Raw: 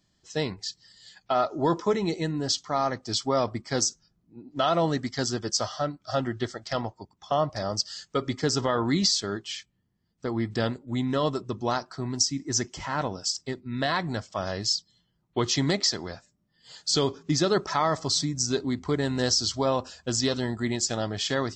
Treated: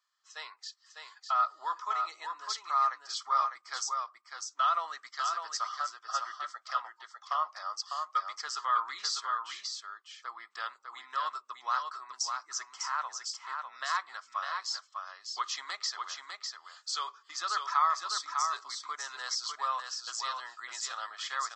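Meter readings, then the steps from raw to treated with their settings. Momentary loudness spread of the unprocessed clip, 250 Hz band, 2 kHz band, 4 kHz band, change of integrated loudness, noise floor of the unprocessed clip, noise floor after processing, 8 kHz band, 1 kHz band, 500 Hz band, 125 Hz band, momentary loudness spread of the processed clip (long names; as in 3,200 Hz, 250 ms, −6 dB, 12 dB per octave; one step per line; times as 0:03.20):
8 LU, below −40 dB, −4.0 dB, −8.5 dB, −6.5 dB, −72 dBFS, −66 dBFS, −8.5 dB, 0.0 dB, −24.0 dB, below −40 dB, 13 LU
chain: four-pole ladder high-pass 1,100 Hz, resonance 75%
single-tap delay 601 ms −5 dB
level +2 dB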